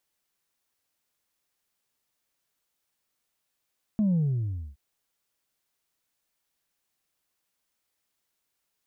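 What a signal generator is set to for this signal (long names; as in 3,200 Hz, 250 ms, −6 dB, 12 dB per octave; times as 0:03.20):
bass drop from 220 Hz, over 0.77 s, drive 1 dB, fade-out 0.62 s, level −21 dB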